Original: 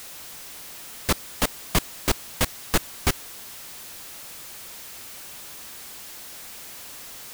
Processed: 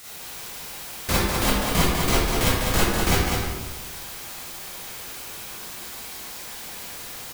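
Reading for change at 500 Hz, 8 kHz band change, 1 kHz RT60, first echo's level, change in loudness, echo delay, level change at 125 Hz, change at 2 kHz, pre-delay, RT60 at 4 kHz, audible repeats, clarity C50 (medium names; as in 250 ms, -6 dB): +6.5 dB, +3.0 dB, 1.2 s, -3.5 dB, +5.0 dB, 199 ms, +7.5 dB, +5.5 dB, 30 ms, 0.80 s, 1, -5.0 dB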